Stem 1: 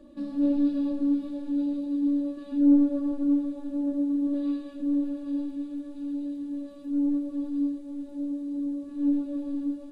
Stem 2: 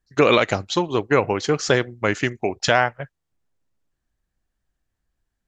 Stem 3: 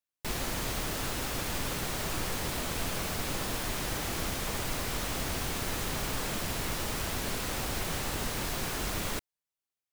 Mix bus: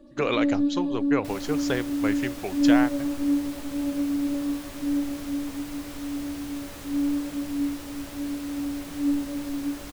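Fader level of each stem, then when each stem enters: 0.0, −9.5, −8.0 decibels; 0.00, 0.00, 1.00 seconds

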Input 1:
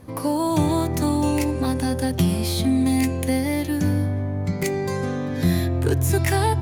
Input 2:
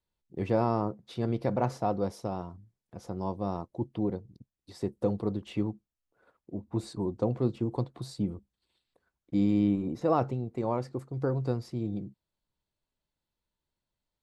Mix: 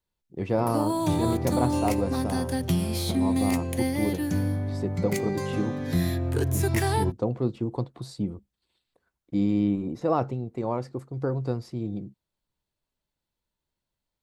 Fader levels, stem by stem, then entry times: −5.0, +1.5 decibels; 0.50, 0.00 seconds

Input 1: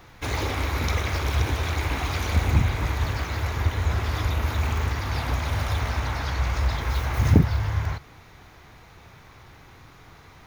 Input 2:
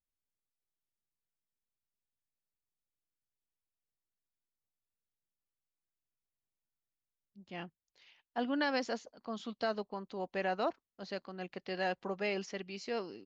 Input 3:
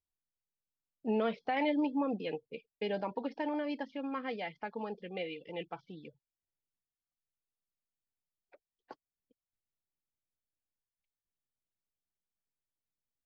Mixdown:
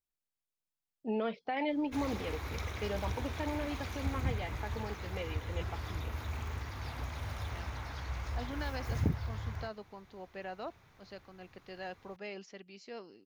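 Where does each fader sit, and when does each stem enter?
−14.0, −8.5, −2.5 decibels; 1.70, 0.00, 0.00 seconds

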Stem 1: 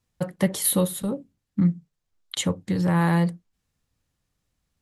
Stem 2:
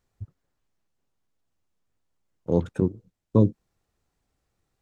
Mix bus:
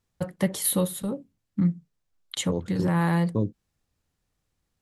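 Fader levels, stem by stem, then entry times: −2.5, −7.5 decibels; 0.00, 0.00 seconds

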